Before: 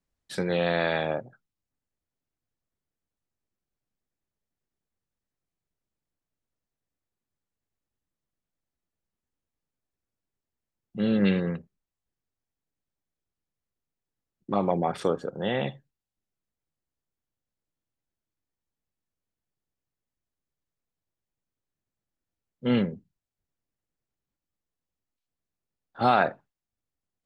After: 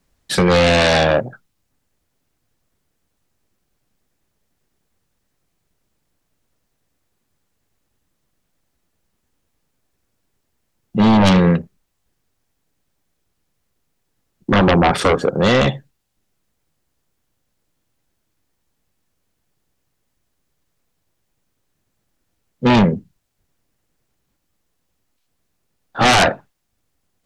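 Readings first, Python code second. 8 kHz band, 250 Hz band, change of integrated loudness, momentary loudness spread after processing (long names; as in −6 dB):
can't be measured, +11.5 dB, +12.0 dB, 13 LU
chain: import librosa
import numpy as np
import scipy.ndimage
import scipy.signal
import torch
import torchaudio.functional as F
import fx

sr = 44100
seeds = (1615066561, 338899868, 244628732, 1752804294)

y = fx.fold_sine(x, sr, drive_db=14, ceiling_db=-8.5)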